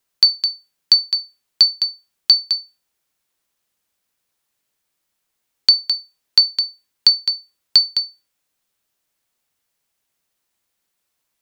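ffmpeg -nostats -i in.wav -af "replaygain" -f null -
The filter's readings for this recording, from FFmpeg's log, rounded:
track_gain = -3.7 dB
track_peak = 0.609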